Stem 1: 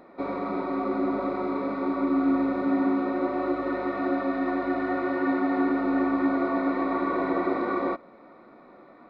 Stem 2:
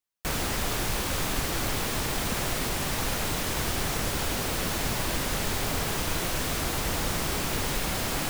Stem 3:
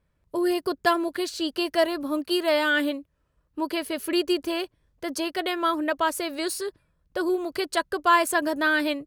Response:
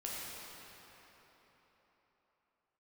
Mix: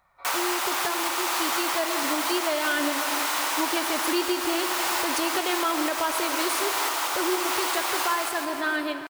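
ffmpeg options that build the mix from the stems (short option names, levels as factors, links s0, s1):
-filter_complex "[0:a]highpass=f=850:w=0.5412,highpass=f=850:w=1.3066,volume=0.376[s0];[1:a]highpass=f=940:t=q:w=2,bandreject=f=1700:w=25,volume=1.26,asplit=3[s1][s2][s3];[s2]volume=0.501[s4];[s3]volume=0.562[s5];[2:a]dynaudnorm=f=420:g=9:m=3.76,volume=0.447,asplit=2[s6][s7];[s7]volume=0.447[s8];[3:a]atrim=start_sample=2205[s9];[s4][s8]amix=inputs=2:normalize=0[s10];[s10][s9]afir=irnorm=-1:irlink=0[s11];[s5]aecho=0:1:157|314|471|628|785|942:1|0.46|0.212|0.0973|0.0448|0.0206[s12];[s0][s1][s6][s11][s12]amix=inputs=5:normalize=0,alimiter=limit=0.178:level=0:latency=1:release=328"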